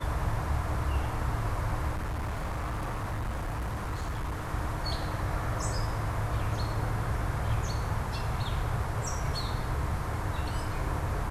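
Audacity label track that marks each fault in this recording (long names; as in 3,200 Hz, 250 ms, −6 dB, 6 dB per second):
1.930000	4.510000	clipping −29.5 dBFS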